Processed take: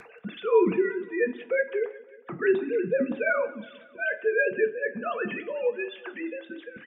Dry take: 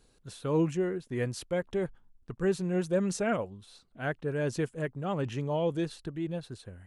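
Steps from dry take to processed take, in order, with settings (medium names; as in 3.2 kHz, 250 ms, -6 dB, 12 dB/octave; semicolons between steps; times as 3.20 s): formants replaced by sine waves; 5.37–6.40 s: high-pass 570 Hz 12 dB/octave; in parallel at +2 dB: upward compressor, threshold -29 dBFS; on the sum: rotary cabinet horn 1.1 Hz; feedback delay 182 ms, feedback 58%, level -20 dB; reverberation RT60 0.40 s, pre-delay 3 ms, DRR 5.5 dB; trim +5 dB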